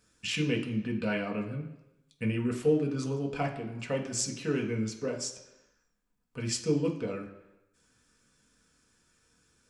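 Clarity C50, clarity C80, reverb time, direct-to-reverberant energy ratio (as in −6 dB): 8.5 dB, 11.5 dB, 1.0 s, −0.5 dB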